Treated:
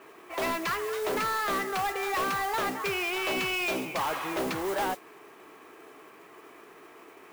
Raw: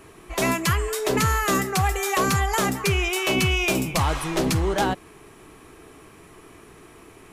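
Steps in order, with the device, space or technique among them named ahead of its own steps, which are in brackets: carbon microphone (BPF 390–2700 Hz; soft clip -25 dBFS, distortion -11 dB; modulation noise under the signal 14 dB)

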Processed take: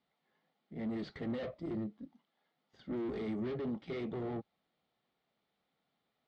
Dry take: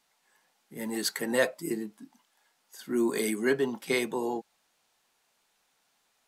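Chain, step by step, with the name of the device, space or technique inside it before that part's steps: guitar amplifier (tube stage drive 37 dB, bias 0.75; tone controls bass +9 dB, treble -9 dB; speaker cabinet 87–4000 Hz, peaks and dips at 98 Hz -5 dB, 960 Hz -9 dB, 1600 Hz -10 dB, 2600 Hz -9 dB)

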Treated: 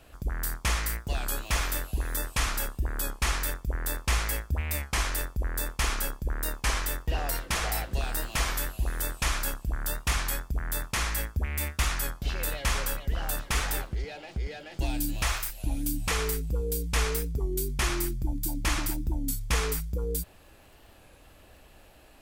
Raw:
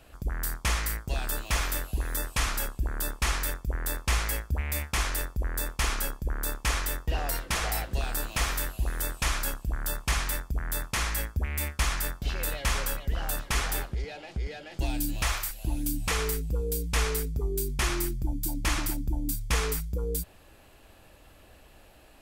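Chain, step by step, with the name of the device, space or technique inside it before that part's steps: warped LP (record warp 33 1/3 rpm, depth 100 cents; crackle 34/s -49 dBFS; pink noise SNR 44 dB)

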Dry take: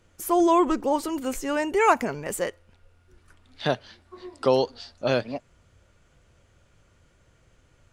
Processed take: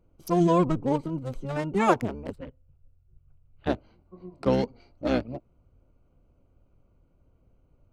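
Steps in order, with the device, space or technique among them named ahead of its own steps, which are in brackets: Wiener smoothing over 25 samples; 2.32–3.67 EQ curve 100 Hz 0 dB, 140 Hz +12 dB, 210 Hz -26 dB, 490 Hz -10 dB, 980 Hz -15 dB, 3000 Hz -7 dB, 5500 Hz -28 dB; octave pedal (harmoniser -12 st 0 dB); gain -4.5 dB

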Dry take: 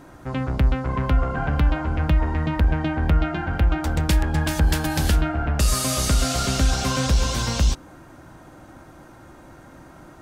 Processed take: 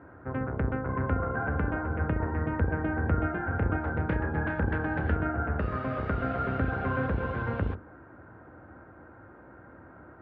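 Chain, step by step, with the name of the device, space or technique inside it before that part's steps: 3.3–4.66 doubler 31 ms -8 dB; air absorption 130 m; sub-octave bass pedal (octaver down 2 oct, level +1 dB; speaker cabinet 76–2000 Hz, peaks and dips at 93 Hz +4 dB, 150 Hz -6 dB, 460 Hz +6 dB, 1500 Hz +7 dB); gain -6 dB

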